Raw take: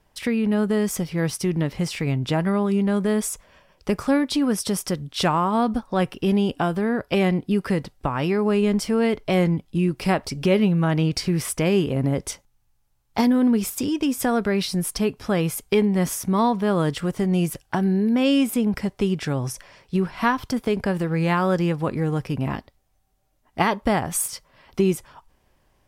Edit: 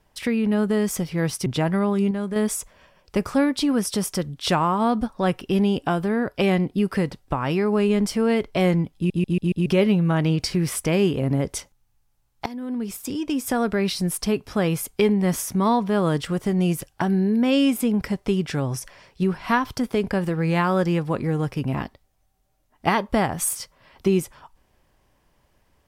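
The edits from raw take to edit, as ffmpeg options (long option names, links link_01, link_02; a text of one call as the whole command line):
ffmpeg -i in.wav -filter_complex "[0:a]asplit=10[link_01][link_02][link_03][link_04][link_05][link_06][link_07][link_08][link_09][link_10];[link_01]atrim=end=1.462[link_11];[link_02]atrim=start=2.188:end=2.842[link_12];[link_03]atrim=start=2.838:end=3.092,asetpts=PTS-STARTPTS,volume=-5.5dB[link_13];[link_04]atrim=start=3.088:end=9.832[link_14];[link_05]atrim=start=9.688:end=9.832[link_15];[link_06]atrim=start=9.688:end=9.832[link_16];[link_07]atrim=start=9.688:end=9.832[link_17];[link_08]atrim=start=9.688:end=9.832[link_18];[link_09]atrim=start=10.388:end=13.19,asetpts=PTS-STARTPTS,afade=type=out:start_time=2.798:duration=0.004:curve=hsin:silence=0.0891251[link_19];[link_10]atrim=start=13.19,asetpts=PTS-STARTPTS,afade=type=in:duration=1.66:curve=qsin:silence=0.0891251[link_20];[link_11][link_12]acrossfade=duration=0.004:curve1=hsin:curve2=hsin[link_21];[link_21][link_13]acrossfade=duration=0.004:curve1=hsin:curve2=hsin[link_22];[link_22][link_14]acrossfade=duration=0.004:curve1=hsin:curve2=hsin[link_23];[link_23][link_15]acrossfade=duration=0.004:curve1=hsin:curve2=hsin[link_24];[link_24][link_16]acrossfade=duration=0.004:curve1=hsin:curve2=hsin[link_25];[link_25][link_17]acrossfade=duration=0.004:curve1=hsin:curve2=hsin[link_26];[link_26][link_18]acrossfade=duration=0.004:curve1=hsin:curve2=hsin[link_27];[link_19][link_20]concat=n=2:v=0:a=1[link_28];[link_27][link_28]acrossfade=duration=0.004:curve1=hsin:curve2=hsin" out.wav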